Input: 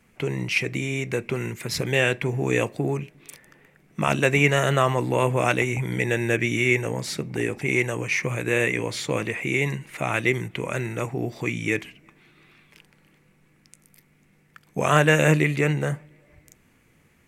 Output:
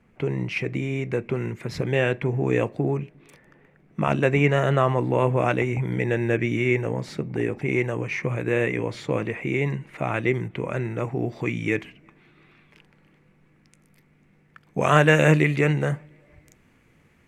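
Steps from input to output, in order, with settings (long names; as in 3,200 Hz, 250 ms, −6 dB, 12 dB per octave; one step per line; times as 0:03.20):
low-pass filter 1,200 Hz 6 dB per octave, from 0:11.07 2,000 Hz, from 0:14.81 3,700 Hz
level +1.5 dB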